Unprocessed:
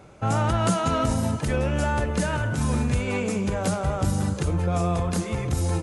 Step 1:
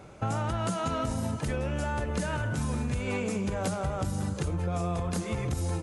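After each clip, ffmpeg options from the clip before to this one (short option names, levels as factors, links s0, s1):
-af "acompressor=threshold=0.0447:ratio=6"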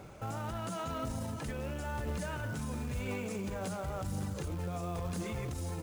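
-af "alimiter=level_in=1.58:limit=0.0631:level=0:latency=1:release=40,volume=0.631,aphaser=in_gain=1:out_gain=1:delay=5:decay=0.21:speed=0.96:type=triangular,acrusher=bits=5:mode=log:mix=0:aa=0.000001,volume=0.794"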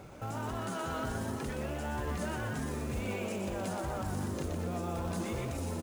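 -filter_complex "[0:a]asplit=7[s0][s1][s2][s3][s4][s5][s6];[s1]adelay=122,afreqshift=150,volume=0.562[s7];[s2]adelay=244,afreqshift=300,volume=0.275[s8];[s3]adelay=366,afreqshift=450,volume=0.135[s9];[s4]adelay=488,afreqshift=600,volume=0.0661[s10];[s5]adelay=610,afreqshift=750,volume=0.0324[s11];[s6]adelay=732,afreqshift=900,volume=0.0158[s12];[s0][s7][s8][s9][s10][s11][s12]amix=inputs=7:normalize=0"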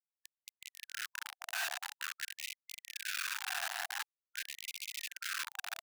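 -filter_complex "[0:a]asplit=3[s0][s1][s2];[s0]bandpass=f=530:t=q:w=8,volume=1[s3];[s1]bandpass=f=1840:t=q:w=8,volume=0.501[s4];[s2]bandpass=f=2480:t=q:w=8,volume=0.355[s5];[s3][s4][s5]amix=inputs=3:normalize=0,acrusher=bits=6:mix=0:aa=0.000001,afftfilt=real='re*gte(b*sr/1024,650*pow(2100/650,0.5+0.5*sin(2*PI*0.47*pts/sr)))':imag='im*gte(b*sr/1024,650*pow(2100/650,0.5+0.5*sin(2*PI*0.47*pts/sr)))':win_size=1024:overlap=0.75,volume=3.35"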